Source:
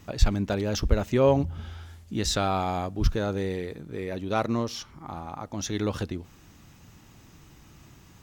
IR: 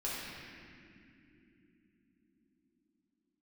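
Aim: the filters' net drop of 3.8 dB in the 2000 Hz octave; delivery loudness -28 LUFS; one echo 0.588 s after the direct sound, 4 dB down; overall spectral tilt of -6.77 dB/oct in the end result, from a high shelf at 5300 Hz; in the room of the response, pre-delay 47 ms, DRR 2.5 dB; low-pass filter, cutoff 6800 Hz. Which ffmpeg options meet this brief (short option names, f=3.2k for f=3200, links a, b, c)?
-filter_complex "[0:a]lowpass=6.8k,equalizer=f=2k:t=o:g=-4,highshelf=f=5.3k:g=-8.5,aecho=1:1:588:0.631,asplit=2[a][b];[1:a]atrim=start_sample=2205,adelay=47[c];[b][c]afir=irnorm=-1:irlink=0,volume=-7dB[d];[a][d]amix=inputs=2:normalize=0,volume=-2.5dB"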